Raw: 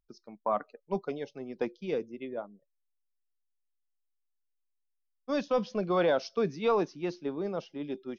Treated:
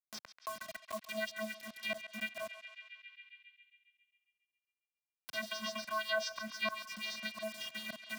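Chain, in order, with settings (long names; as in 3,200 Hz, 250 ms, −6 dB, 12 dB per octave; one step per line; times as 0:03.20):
auto-filter high-pass sine 4 Hz 830–4,800 Hz
brickwall limiter −25.5 dBFS, peak gain reduction 10 dB
channel vocoder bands 16, square 217 Hz
volume swells 378 ms
bit reduction 11 bits
feedback echo with a band-pass in the loop 136 ms, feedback 67%, band-pass 2,600 Hz, level −10 dB
multiband upward and downward compressor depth 70%
level +14 dB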